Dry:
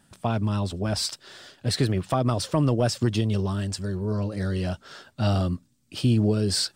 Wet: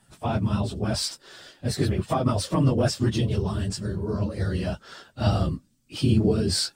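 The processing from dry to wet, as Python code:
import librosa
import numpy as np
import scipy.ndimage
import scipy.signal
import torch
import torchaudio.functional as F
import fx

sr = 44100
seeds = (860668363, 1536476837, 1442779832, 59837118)

y = fx.phase_scramble(x, sr, seeds[0], window_ms=50)
y = fx.dynamic_eq(y, sr, hz=3000.0, q=0.74, threshold_db=-44.0, ratio=4.0, max_db=-8, at=(1.12, 1.81), fade=0.02)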